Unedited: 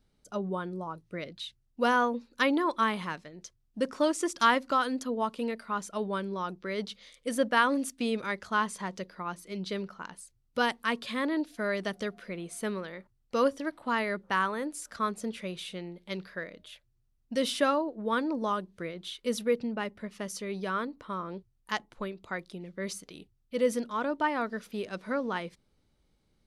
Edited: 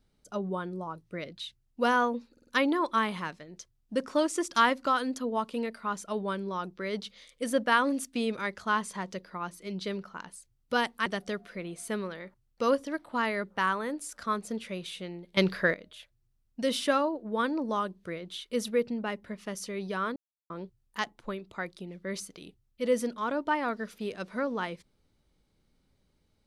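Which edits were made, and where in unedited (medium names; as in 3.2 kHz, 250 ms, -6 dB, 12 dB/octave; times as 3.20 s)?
2.32 s: stutter 0.05 s, 4 plays
10.91–11.79 s: delete
16.10–16.47 s: gain +12 dB
20.89–21.23 s: mute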